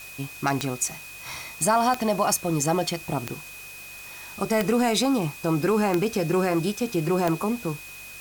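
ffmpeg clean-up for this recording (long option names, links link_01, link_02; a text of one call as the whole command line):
ffmpeg -i in.wav -af "adeclick=threshold=4,bandreject=frequency=48.4:width_type=h:width=4,bandreject=frequency=96.8:width_type=h:width=4,bandreject=frequency=145.2:width_type=h:width=4,bandreject=frequency=2500:width=30,afwtdn=0.0063" out.wav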